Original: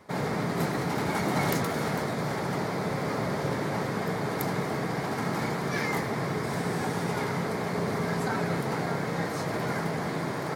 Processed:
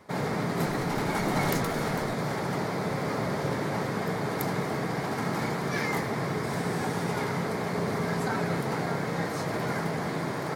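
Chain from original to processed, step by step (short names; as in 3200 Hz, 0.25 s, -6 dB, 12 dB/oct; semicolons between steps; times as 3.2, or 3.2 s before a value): 0.66–2.13 added noise brown -45 dBFS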